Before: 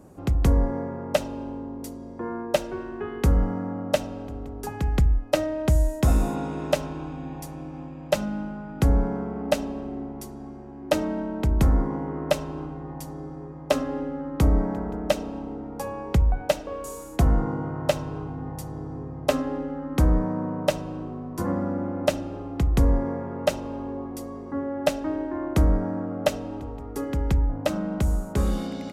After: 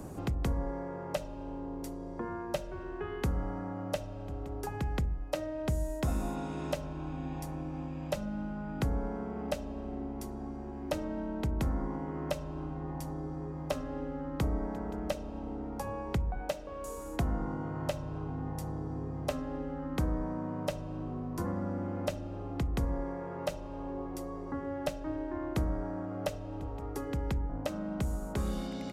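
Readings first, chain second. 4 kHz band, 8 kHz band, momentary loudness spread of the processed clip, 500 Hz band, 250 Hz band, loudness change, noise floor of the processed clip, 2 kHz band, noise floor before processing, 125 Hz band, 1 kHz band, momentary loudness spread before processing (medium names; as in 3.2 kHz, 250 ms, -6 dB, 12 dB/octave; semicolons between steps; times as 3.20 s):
-10.0 dB, -9.5 dB, 6 LU, -10.0 dB, -8.0 dB, -9.5 dB, -41 dBFS, -9.0 dB, -39 dBFS, -9.5 dB, -7.5 dB, 13 LU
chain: de-hum 46.61 Hz, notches 14; three bands compressed up and down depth 70%; trim -8.5 dB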